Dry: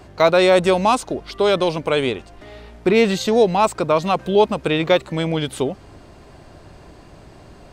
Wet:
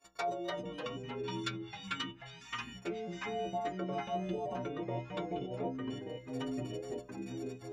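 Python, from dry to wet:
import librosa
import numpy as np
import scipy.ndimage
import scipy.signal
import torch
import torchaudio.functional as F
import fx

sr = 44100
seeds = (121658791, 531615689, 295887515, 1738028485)

y = fx.freq_snap(x, sr, grid_st=4)
y = fx.spec_box(y, sr, start_s=0.51, length_s=2.25, low_hz=340.0, high_hz=1100.0, gain_db=-25)
y = fx.level_steps(y, sr, step_db=21)
y = fx.env_flanger(y, sr, rest_ms=7.6, full_db=-20.0)
y = fx.env_lowpass_down(y, sr, base_hz=790.0, full_db=-22.0)
y = fx.echo_pitch(y, sr, ms=257, semitones=-3, count=3, db_per_echo=-3.0)
y = fx.low_shelf(y, sr, hz=320.0, db=-11.5)
y = fx.stiff_resonator(y, sr, f0_hz=61.0, decay_s=0.41, stiffness=0.008)
y = y * librosa.db_to_amplitude(2.5)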